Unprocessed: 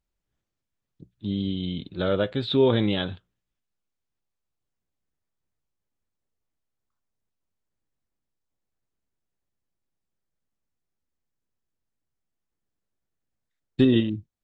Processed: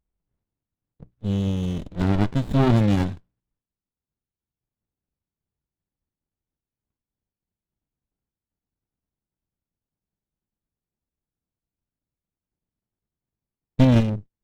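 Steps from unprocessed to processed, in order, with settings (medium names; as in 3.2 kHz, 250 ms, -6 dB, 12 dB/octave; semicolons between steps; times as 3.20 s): level-controlled noise filter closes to 2.2 kHz, open at -20 dBFS; sliding maximum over 65 samples; trim +3.5 dB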